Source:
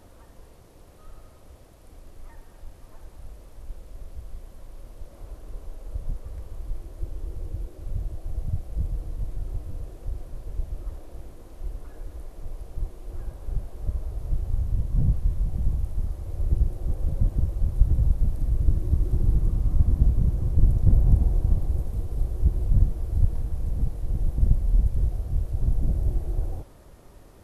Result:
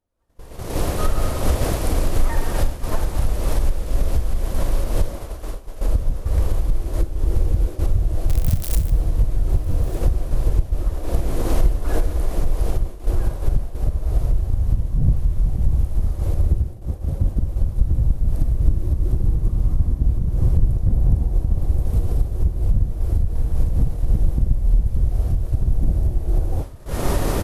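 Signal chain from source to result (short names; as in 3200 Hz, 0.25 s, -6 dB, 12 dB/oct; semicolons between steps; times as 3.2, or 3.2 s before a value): 8.29–8.9 switching spikes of -25 dBFS; recorder AGC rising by 41 dB/s; 5.18–5.81 low shelf 290 Hz -8.5 dB; 16.61–17.24 HPF 42 Hz 12 dB/oct; Schroeder reverb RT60 0.58 s, combs from 26 ms, DRR 12.5 dB; expander -19 dBFS; echo 1.198 s -20.5 dB; noise-modulated level, depth 50%; gain +3 dB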